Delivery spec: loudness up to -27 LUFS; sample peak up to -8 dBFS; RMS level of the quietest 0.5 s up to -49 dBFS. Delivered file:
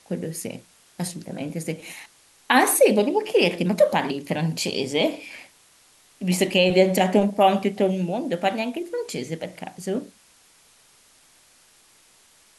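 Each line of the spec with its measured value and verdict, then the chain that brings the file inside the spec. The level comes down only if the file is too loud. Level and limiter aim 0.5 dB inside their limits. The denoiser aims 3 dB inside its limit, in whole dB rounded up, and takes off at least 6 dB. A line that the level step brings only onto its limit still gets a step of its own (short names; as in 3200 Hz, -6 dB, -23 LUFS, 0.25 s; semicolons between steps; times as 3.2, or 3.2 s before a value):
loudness -22.5 LUFS: fail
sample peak -5.0 dBFS: fail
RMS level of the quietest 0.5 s -57 dBFS: OK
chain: gain -5 dB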